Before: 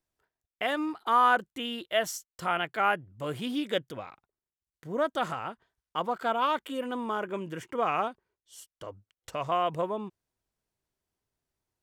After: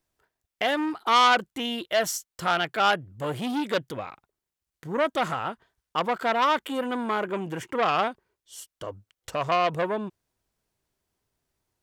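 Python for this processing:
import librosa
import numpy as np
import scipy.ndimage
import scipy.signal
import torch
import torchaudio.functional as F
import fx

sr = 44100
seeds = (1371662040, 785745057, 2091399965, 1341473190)

y = fx.transformer_sat(x, sr, knee_hz=2300.0)
y = F.gain(torch.from_numpy(y), 6.5).numpy()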